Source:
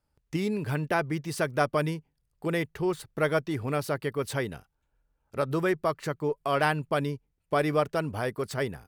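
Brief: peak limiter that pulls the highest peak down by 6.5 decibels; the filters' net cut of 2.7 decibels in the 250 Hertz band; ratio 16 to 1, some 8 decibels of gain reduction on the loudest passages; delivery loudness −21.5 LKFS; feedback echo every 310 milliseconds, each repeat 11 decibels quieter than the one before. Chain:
parametric band 250 Hz −4.5 dB
downward compressor 16 to 1, threshold −28 dBFS
brickwall limiter −24.5 dBFS
repeating echo 310 ms, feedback 28%, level −11 dB
level +14.5 dB

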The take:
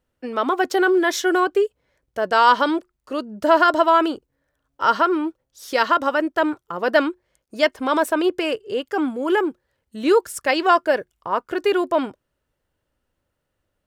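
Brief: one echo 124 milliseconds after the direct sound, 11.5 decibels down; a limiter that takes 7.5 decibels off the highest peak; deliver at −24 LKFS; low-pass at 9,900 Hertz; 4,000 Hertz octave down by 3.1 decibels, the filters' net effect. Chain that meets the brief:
low-pass filter 9,900 Hz
parametric band 4,000 Hz −4.5 dB
brickwall limiter −10 dBFS
single-tap delay 124 ms −11.5 dB
level −2 dB

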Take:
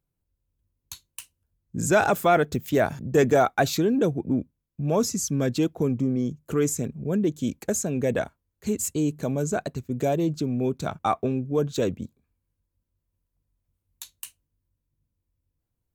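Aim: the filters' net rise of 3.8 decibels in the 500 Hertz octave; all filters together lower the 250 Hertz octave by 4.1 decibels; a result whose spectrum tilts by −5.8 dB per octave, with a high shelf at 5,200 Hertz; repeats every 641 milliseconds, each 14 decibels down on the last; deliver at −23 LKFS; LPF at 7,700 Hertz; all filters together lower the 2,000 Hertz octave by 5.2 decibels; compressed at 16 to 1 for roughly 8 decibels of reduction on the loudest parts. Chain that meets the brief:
low-pass filter 7,700 Hz
parametric band 250 Hz −8 dB
parametric band 500 Hz +7.5 dB
parametric band 2,000 Hz −7.5 dB
high-shelf EQ 5,200 Hz −8 dB
downward compressor 16 to 1, threshold −19 dBFS
repeating echo 641 ms, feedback 20%, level −14 dB
level +4.5 dB

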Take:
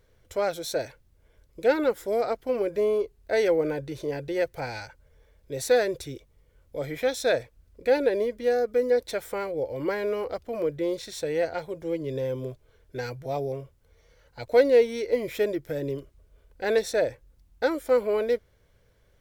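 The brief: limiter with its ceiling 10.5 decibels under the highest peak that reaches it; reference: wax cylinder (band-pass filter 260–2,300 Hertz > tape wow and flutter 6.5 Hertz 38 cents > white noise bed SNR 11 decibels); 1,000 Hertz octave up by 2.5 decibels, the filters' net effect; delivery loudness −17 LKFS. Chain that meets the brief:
parametric band 1,000 Hz +4 dB
brickwall limiter −18.5 dBFS
band-pass filter 260–2,300 Hz
tape wow and flutter 6.5 Hz 38 cents
white noise bed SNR 11 dB
level +13 dB

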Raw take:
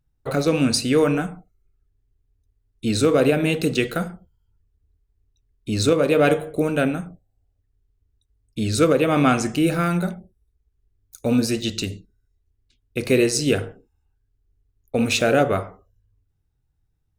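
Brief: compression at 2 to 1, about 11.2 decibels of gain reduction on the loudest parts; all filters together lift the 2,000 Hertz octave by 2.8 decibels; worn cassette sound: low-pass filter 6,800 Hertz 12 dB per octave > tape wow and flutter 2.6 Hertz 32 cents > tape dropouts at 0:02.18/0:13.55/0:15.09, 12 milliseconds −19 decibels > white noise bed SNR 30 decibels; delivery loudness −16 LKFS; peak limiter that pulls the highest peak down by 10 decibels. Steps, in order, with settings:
parametric band 2,000 Hz +4 dB
downward compressor 2 to 1, threshold −34 dBFS
brickwall limiter −24.5 dBFS
low-pass filter 6,800 Hz 12 dB per octave
tape wow and flutter 2.6 Hz 32 cents
tape dropouts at 0:02.18/0:13.55/0:15.09, 12 ms −19 dB
white noise bed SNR 30 dB
level +19 dB

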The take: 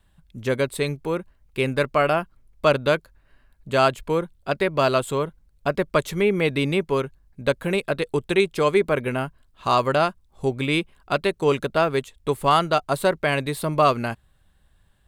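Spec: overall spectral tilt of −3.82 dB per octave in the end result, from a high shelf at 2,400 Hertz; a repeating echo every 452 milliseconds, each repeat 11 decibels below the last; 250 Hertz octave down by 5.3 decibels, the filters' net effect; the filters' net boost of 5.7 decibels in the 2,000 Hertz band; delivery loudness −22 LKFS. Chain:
parametric band 250 Hz −8.5 dB
parametric band 2,000 Hz +5 dB
high-shelf EQ 2,400 Hz +5 dB
repeating echo 452 ms, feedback 28%, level −11 dB

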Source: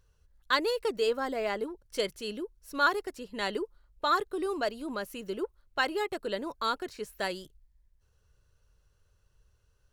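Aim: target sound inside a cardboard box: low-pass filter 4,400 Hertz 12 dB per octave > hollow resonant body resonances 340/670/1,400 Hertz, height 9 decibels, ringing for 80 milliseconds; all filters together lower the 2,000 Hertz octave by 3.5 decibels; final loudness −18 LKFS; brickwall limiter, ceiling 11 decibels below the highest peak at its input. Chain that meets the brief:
parametric band 2,000 Hz −5 dB
brickwall limiter −25.5 dBFS
low-pass filter 4,400 Hz 12 dB per octave
hollow resonant body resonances 340/670/1,400 Hz, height 9 dB, ringing for 80 ms
level +16.5 dB

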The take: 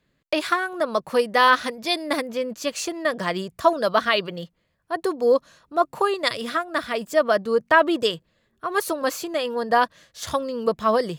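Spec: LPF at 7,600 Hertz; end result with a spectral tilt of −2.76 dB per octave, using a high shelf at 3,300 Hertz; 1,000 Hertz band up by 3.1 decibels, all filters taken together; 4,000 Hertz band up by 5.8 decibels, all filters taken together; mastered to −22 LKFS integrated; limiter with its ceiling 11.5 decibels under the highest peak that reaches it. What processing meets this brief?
low-pass filter 7,600 Hz
parametric band 1,000 Hz +3 dB
high-shelf EQ 3,300 Hz +5 dB
parametric band 4,000 Hz +4 dB
level +3 dB
brickwall limiter −9.5 dBFS

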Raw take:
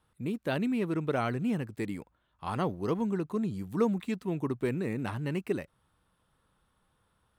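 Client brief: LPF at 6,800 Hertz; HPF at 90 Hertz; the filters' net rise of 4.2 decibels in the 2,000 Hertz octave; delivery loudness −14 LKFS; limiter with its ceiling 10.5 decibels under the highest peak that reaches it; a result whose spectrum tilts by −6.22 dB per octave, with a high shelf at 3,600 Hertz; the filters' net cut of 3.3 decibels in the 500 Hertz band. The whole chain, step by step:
high-pass filter 90 Hz
low-pass filter 6,800 Hz
parametric band 500 Hz −4.5 dB
parametric band 2,000 Hz +4.5 dB
high-shelf EQ 3,600 Hz +5 dB
level +21 dB
brickwall limiter −3 dBFS

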